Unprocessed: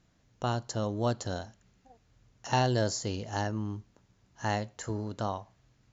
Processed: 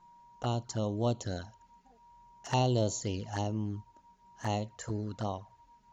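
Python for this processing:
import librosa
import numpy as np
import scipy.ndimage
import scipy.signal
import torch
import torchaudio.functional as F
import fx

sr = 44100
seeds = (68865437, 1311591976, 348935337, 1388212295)

y = x + 10.0 ** (-55.0 / 20.0) * np.sin(2.0 * np.pi * 950.0 * np.arange(len(x)) / sr)
y = fx.env_flanger(y, sr, rest_ms=6.0, full_db=-28.0)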